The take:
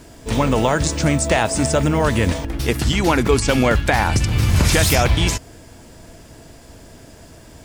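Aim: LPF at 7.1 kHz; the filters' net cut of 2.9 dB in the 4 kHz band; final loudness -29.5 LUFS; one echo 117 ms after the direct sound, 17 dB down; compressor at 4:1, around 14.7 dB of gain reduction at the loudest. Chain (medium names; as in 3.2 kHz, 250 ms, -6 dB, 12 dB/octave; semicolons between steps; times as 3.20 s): low-pass 7.1 kHz; peaking EQ 4 kHz -3.5 dB; compression 4:1, threshold -30 dBFS; delay 117 ms -17 dB; trim +2 dB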